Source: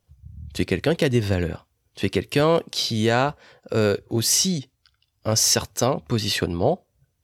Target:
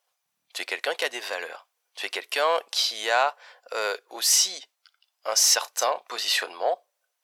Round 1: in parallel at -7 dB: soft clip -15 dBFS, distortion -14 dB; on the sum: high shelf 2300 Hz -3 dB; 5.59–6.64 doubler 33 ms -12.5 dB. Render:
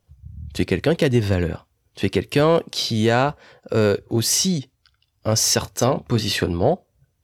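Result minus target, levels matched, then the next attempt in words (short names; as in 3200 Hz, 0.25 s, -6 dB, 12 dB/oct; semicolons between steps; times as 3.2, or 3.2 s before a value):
500 Hz band +5.0 dB
in parallel at -7 dB: soft clip -15 dBFS, distortion -14 dB; on the sum: HPF 660 Hz 24 dB/oct; high shelf 2300 Hz -3 dB; 5.59–6.64 doubler 33 ms -12.5 dB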